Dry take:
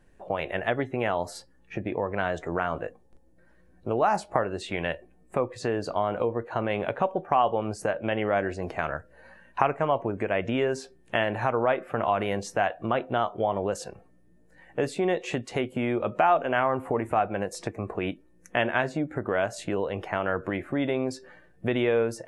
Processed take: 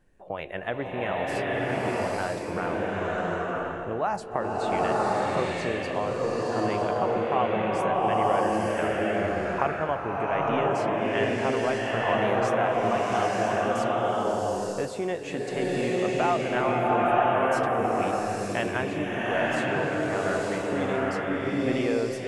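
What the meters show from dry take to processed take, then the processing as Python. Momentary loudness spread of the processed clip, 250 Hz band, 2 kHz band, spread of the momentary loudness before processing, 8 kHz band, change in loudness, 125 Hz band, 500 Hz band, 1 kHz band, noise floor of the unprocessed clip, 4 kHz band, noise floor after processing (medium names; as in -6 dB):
6 LU, +2.0 dB, +2.0 dB, 9 LU, +2.0 dB, +1.5 dB, +1.0 dB, +2.0 dB, +2.5 dB, -58 dBFS, +2.0 dB, -35 dBFS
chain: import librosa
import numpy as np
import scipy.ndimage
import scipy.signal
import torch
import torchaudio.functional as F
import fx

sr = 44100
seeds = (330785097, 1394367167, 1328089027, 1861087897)

y = fx.rev_bloom(x, sr, seeds[0], attack_ms=960, drr_db=-5.5)
y = F.gain(torch.from_numpy(y), -4.5).numpy()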